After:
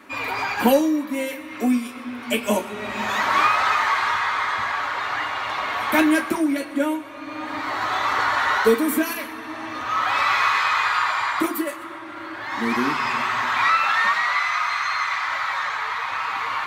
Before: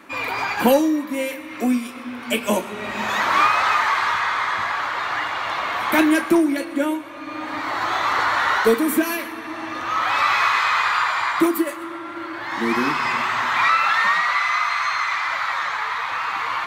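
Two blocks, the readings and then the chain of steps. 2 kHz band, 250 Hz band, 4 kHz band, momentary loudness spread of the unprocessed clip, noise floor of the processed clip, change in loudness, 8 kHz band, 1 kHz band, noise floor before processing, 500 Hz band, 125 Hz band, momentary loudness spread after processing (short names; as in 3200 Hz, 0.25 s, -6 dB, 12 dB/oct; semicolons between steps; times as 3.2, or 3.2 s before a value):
-1.5 dB, -1.5 dB, -1.0 dB, 11 LU, -36 dBFS, -1.5 dB, -1.5 dB, -1.5 dB, -34 dBFS, -1.5 dB, -1.0 dB, 12 LU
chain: notch comb 170 Hz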